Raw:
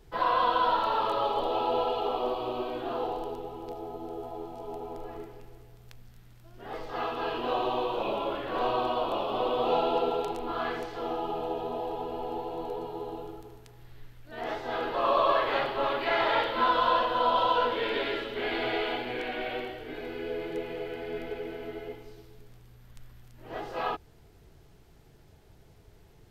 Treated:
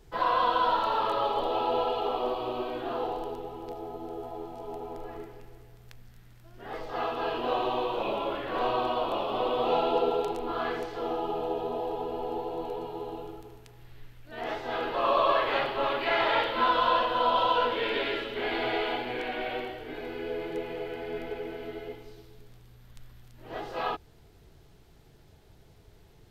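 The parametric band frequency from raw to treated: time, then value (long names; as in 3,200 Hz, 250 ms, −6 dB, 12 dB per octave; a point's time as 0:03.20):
parametric band +3 dB 0.63 octaves
7,000 Hz
from 0:01.01 1,800 Hz
from 0:06.81 630 Hz
from 0:07.53 2,000 Hz
from 0:09.92 430 Hz
from 0:12.63 2,600 Hz
from 0:18.38 900 Hz
from 0:21.57 3,800 Hz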